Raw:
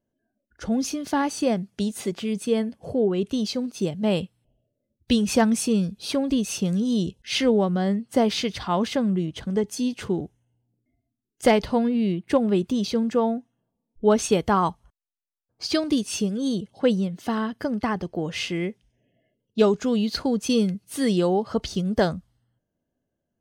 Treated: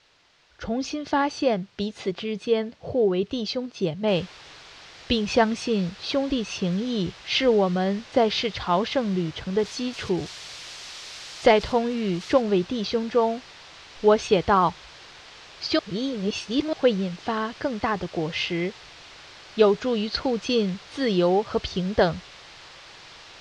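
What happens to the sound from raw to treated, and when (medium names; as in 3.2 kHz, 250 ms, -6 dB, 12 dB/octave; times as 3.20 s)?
4.08 s: noise floor step -57 dB -42 dB
9.59–12.42 s: zero-crossing glitches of -24.5 dBFS
15.79–16.73 s: reverse
whole clip: low-pass 4.9 kHz 24 dB/octave; peaking EQ 230 Hz -8.5 dB 0.64 oct; trim +2.5 dB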